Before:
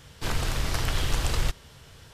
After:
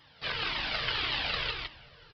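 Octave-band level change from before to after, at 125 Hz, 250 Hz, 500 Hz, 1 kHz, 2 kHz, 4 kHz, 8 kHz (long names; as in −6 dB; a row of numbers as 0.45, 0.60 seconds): −15.5 dB, −10.0 dB, −5.0 dB, −1.5 dB, +3.0 dB, +3.5 dB, below −20 dB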